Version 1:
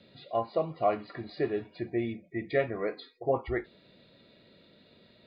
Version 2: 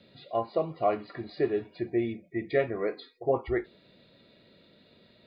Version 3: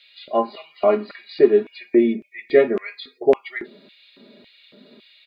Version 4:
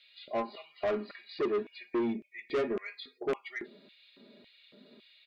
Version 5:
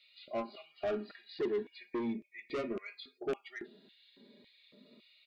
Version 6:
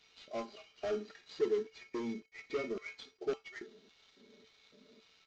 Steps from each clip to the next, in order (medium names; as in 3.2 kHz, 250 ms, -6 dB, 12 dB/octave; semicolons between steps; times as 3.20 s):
dynamic bell 380 Hz, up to +4 dB, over -43 dBFS, Q 2.8
comb 4.9 ms, depth 73%; LFO high-pass square 1.8 Hz 260–2500 Hz; trim +6 dB
saturation -17.5 dBFS, distortion -7 dB; trim -8.5 dB
Shepard-style phaser rising 0.4 Hz; trim -2.5 dB
CVSD coder 32 kbps; feedback comb 440 Hz, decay 0.17 s, harmonics odd, mix 80%; trim +10 dB